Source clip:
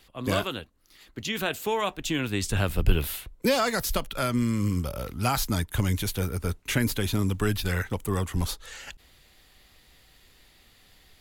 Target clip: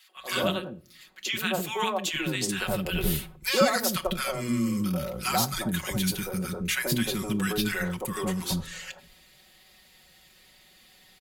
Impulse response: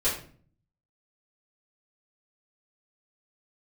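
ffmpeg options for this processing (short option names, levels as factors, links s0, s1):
-filter_complex "[0:a]highpass=f=130:p=1,aecho=1:1:5.4:0.72,acrossover=split=340|1100[s0][s1][s2];[s1]adelay=90[s3];[s0]adelay=160[s4];[s4][s3][s2]amix=inputs=3:normalize=0,asplit=2[s5][s6];[1:a]atrim=start_sample=2205[s7];[s6][s7]afir=irnorm=-1:irlink=0,volume=0.0708[s8];[s5][s8]amix=inputs=2:normalize=0"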